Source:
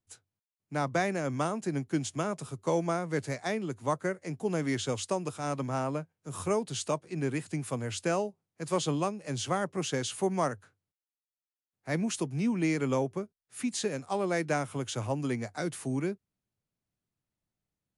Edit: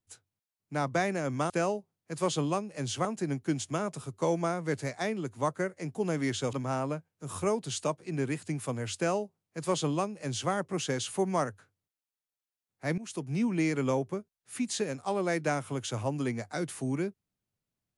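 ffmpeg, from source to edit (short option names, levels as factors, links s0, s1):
-filter_complex "[0:a]asplit=5[s0][s1][s2][s3][s4];[s0]atrim=end=1.502[s5];[s1]atrim=start=7.998:end=9.552[s6];[s2]atrim=start=1.498:end=4.982[s7];[s3]atrim=start=5.568:end=12.02,asetpts=PTS-STARTPTS,afade=t=out:st=6.448:d=0.004:c=hsin:silence=0.133352[s8];[s4]atrim=start=12.02,asetpts=PTS-STARTPTS,afade=t=in:d=0.35:silence=0.133352[s9];[s5][s6]acrossfade=d=0.004:c1=hsin:c2=hsin[s10];[s10][s7]acrossfade=d=0.004:c1=hsin:c2=hsin[s11];[s8][s9]concat=n=2:v=0:a=1[s12];[s11][s12]acrossfade=d=0.004:c1=hsin:c2=hsin"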